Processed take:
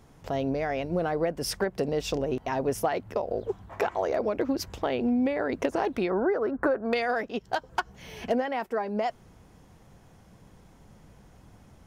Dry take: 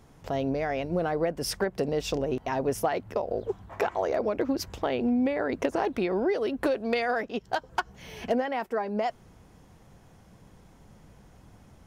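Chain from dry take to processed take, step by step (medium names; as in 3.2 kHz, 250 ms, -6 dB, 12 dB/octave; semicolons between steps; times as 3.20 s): 6.10–6.93 s: resonant high shelf 2.1 kHz -13 dB, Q 3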